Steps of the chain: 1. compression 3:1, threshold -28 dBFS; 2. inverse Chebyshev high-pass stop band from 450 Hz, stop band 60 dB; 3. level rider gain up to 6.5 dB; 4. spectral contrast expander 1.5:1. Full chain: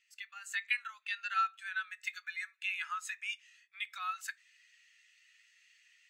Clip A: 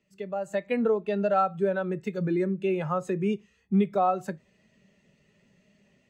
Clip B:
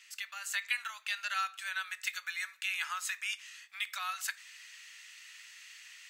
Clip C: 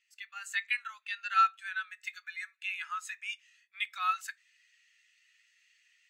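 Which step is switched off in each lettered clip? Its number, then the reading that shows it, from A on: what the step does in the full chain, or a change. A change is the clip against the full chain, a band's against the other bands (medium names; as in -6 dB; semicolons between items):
2, crest factor change -7.5 dB; 4, 1 kHz band -7.5 dB; 1, 1 kHz band +5.0 dB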